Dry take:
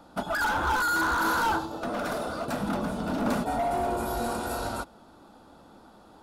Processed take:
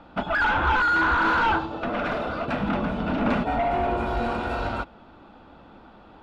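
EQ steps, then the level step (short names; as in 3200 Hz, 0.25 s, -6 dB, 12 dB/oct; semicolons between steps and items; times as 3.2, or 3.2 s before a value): synth low-pass 2600 Hz, resonance Q 2.2; low shelf 100 Hz +7 dB; +2.5 dB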